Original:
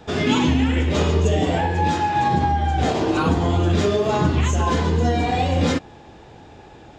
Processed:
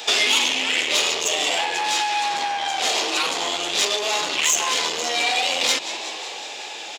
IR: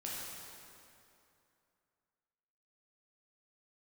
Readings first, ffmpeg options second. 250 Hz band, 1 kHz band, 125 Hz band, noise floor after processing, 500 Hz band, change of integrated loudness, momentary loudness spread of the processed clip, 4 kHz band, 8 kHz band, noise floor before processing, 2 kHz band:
−17.0 dB, −3.0 dB, below −30 dB, −34 dBFS, −6.5 dB, 0.0 dB, 10 LU, +11.5 dB, +14.0 dB, −45 dBFS, +6.0 dB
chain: -filter_complex "[0:a]highshelf=frequency=6800:gain=10.5,asplit=6[link_01][link_02][link_03][link_04][link_05][link_06];[link_02]adelay=185,afreqshift=77,volume=-22.5dB[link_07];[link_03]adelay=370,afreqshift=154,volume=-26.4dB[link_08];[link_04]adelay=555,afreqshift=231,volume=-30.3dB[link_09];[link_05]adelay=740,afreqshift=308,volume=-34.1dB[link_10];[link_06]adelay=925,afreqshift=385,volume=-38dB[link_11];[link_01][link_07][link_08][link_09][link_10][link_11]amix=inputs=6:normalize=0,aeval=exprs='(tanh(8.91*val(0)+0.5)-tanh(0.5))/8.91':channel_layout=same,acontrast=80,asplit=2[link_12][link_13];[link_13]highpass=frequency=720:poles=1,volume=13dB,asoftclip=type=tanh:threshold=-4.5dB[link_14];[link_12][link_14]amix=inputs=2:normalize=0,lowpass=frequency=2200:poles=1,volume=-6dB,acompressor=threshold=-20dB:ratio=6,aexciter=amount=3.5:drive=8.5:freq=2200,highpass=480,volume=-2dB"

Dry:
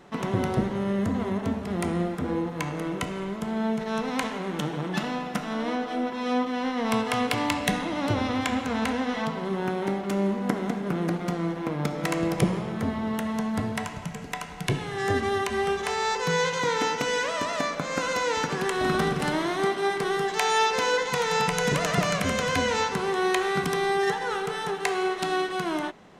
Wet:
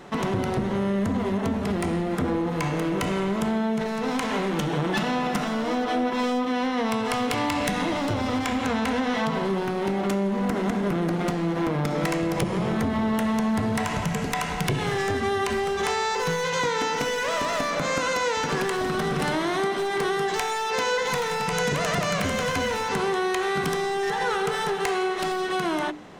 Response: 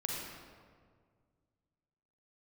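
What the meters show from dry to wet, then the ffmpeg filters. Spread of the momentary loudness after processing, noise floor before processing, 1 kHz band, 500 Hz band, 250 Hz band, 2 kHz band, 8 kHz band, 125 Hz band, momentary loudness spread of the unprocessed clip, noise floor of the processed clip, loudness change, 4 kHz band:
2 LU, −35 dBFS, +1.5 dB, +1.5 dB, +2.0 dB, +1.0 dB, +1.0 dB, +1.5 dB, 6 LU, −28 dBFS, +1.5 dB, +1.0 dB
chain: -filter_complex "[0:a]bandreject=frequency=60:width_type=h:width=6,bandreject=frequency=120:width_type=h:width=6,bandreject=frequency=180:width_type=h:width=6,bandreject=frequency=240:width_type=h:width=6,bandreject=frequency=300:width_type=h:width=6,dynaudnorm=framelen=500:gausssize=11:maxgain=5dB,asplit=2[link_01][link_02];[link_02]alimiter=limit=-22.5dB:level=0:latency=1,volume=2.5dB[link_03];[link_01][link_03]amix=inputs=2:normalize=0,acompressor=threshold=-20dB:ratio=16,aeval=exprs='clip(val(0),-1,0.0891)':channel_layout=same"

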